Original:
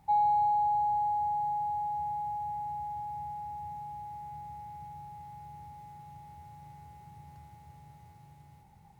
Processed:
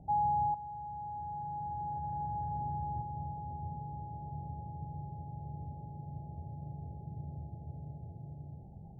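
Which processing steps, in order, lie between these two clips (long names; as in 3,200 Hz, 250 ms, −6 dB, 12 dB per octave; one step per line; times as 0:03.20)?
elliptic low-pass filter 690 Hz, stop band 40 dB
0:00.54–0:03.02: compressor whose output falls as the input rises −50 dBFS, ratio −1
level +11 dB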